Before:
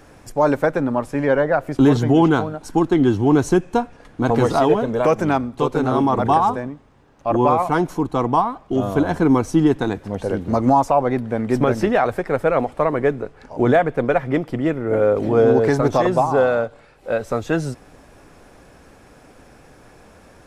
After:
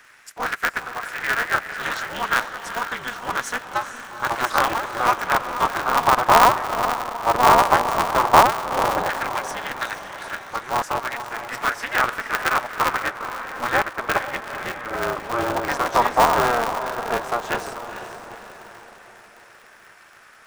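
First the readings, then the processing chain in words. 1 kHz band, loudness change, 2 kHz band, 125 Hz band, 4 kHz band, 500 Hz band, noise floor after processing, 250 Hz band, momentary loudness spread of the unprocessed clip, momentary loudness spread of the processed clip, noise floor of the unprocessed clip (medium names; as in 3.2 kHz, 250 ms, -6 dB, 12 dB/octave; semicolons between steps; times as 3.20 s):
+2.5 dB, -3.0 dB, +6.0 dB, -14.0 dB, +7.5 dB, -8.0 dB, -49 dBFS, -15.5 dB, 8 LU, 15 LU, -49 dBFS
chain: LFO high-pass saw down 0.11 Hz 790–1700 Hz; echo that smears into a reverb 456 ms, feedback 51%, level -9 dB; polarity switched at an audio rate 120 Hz; trim -1 dB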